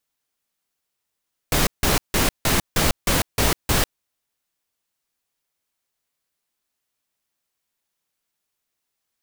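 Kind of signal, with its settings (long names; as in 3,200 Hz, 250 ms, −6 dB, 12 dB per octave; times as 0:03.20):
noise bursts pink, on 0.15 s, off 0.16 s, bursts 8, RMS −18.5 dBFS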